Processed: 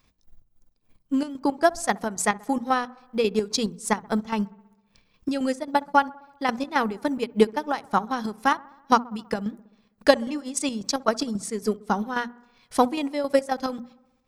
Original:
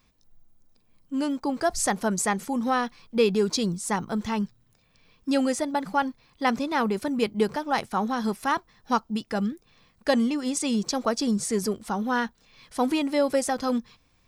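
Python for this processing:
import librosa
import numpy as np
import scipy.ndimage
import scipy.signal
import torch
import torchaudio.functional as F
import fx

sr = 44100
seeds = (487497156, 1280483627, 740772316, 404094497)

p1 = fx.transient(x, sr, attack_db=8, sustain_db=-9)
p2 = fx.chopper(p1, sr, hz=3.7, depth_pct=60, duty_pct=55)
p3 = fx.hum_notches(p2, sr, base_hz=60, count=4)
y = p3 + fx.echo_wet_lowpass(p3, sr, ms=65, feedback_pct=64, hz=1400.0, wet_db=-22.0, dry=0)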